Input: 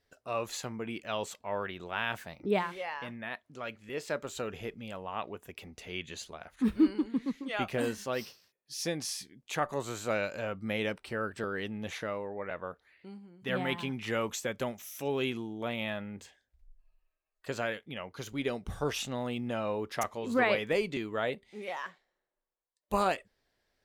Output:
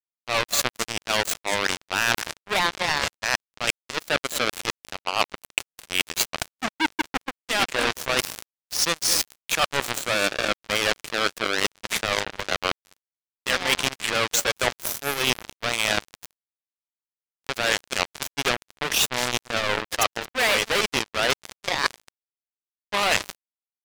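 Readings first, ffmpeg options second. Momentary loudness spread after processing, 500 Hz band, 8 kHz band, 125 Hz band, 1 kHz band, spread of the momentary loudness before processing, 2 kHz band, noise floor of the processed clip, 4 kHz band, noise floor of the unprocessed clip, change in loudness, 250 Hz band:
7 LU, +4.5 dB, +17.0 dB, +2.5 dB, +9.5 dB, 12 LU, +13.0 dB, under -85 dBFS, +17.5 dB, -84 dBFS, +10.0 dB, -1.0 dB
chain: -filter_complex "[0:a]aeval=exprs='val(0)+0.5*0.0188*sgn(val(0))':c=same,afftfilt=real='re*gte(hypot(re,im),0.0141)':imag='im*gte(hypot(re,im),0.0141)':win_size=1024:overlap=0.75,acrossover=split=3700[a][b];[a]asoftclip=type=hard:threshold=-27.5dB[c];[c][b]amix=inputs=2:normalize=0,highpass=f=960:p=1,aecho=1:1:223|446|669:0.282|0.0761|0.0205,acrusher=bits=4:mix=0:aa=0.5,areverse,acompressor=threshold=-51dB:ratio=4,areverse,alimiter=level_in=31dB:limit=-1dB:release=50:level=0:latency=1,volume=-1dB"

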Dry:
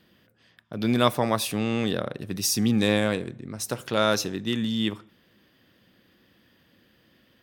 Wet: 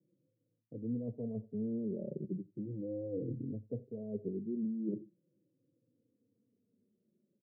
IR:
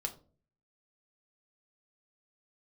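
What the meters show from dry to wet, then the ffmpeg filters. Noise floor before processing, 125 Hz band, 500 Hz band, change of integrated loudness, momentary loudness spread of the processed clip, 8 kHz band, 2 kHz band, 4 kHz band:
-63 dBFS, -12.0 dB, -14.0 dB, -14.5 dB, 6 LU, under -40 dB, under -40 dB, under -40 dB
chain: -filter_complex "[0:a]afftdn=nr=16:nf=-39,areverse,acompressor=threshold=-36dB:ratio=8,areverse,asuperpass=centerf=240:order=12:qfactor=0.56,asplit=2[a][b];[b]adelay=87.46,volume=-25dB,highshelf=f=4k:g=-1.97[c];[a][c]amix=inputs=2:normalize=0,asplit=2[d][e];[e]adelay=3.3,afreqshift=-0.38[f];[d][f]amix=inputs=2:normalize=1,volume=5.5dB"

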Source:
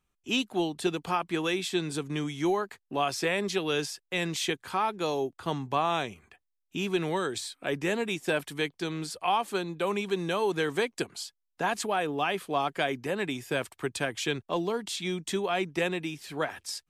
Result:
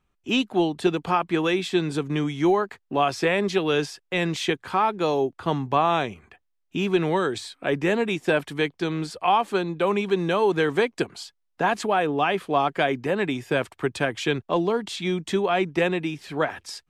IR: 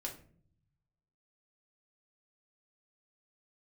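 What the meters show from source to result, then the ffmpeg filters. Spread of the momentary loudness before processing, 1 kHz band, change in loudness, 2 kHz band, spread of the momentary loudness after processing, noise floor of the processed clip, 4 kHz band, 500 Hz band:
6 LU, +6.5 dB, +6.0 dB, +5.0 dB, 6 LU, -73 dBFS, +2.5 dB, +7.0 dB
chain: -af "lowpass=f=2.5k:p=1,volume=7dB"

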